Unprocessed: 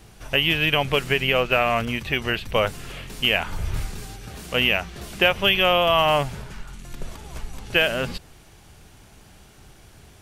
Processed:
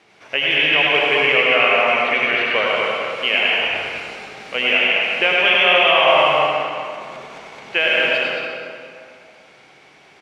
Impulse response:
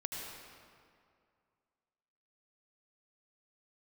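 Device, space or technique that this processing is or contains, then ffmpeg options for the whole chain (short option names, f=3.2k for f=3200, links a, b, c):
station announcement: -filter_complex "[0:a]highpass=370,lowpass=4.2k,equalizer=f=2.2k:t=o:w=0.27:g=7.5,aecho=1:1:99.13|218.7|282.8:0.708|0.562|0.316[a];[1:a]atrim=start_sample=2205[b];[a][b]afir=irnorm=-1:irlink=0,volume=2dB"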